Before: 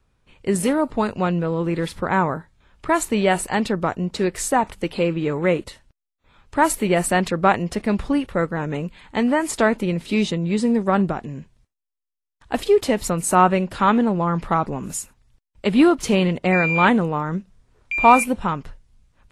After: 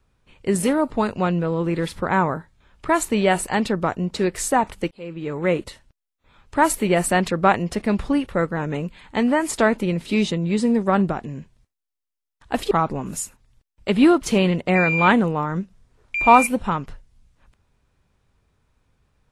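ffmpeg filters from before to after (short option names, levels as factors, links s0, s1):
-filter_complex "[0:a]asplit=3[s0][s1][s2];[s0]atrim=end=4.91,asetpts=PTS-STARTPTS,afade=t=out:st=4.906:d=0.004:c=hsin[s3];[s1]atrim=start=4.91:end=12.712,asetpts=PTS-STARTPTS,afade=t=in:d=0.68[s4];[s2]atrim=start=14.478[s5];[s3][s4]concat=n=2:v=0:a=1[s6];[s6][s5]acrossfade=d=0.004:c1=hsin:c2=hsin"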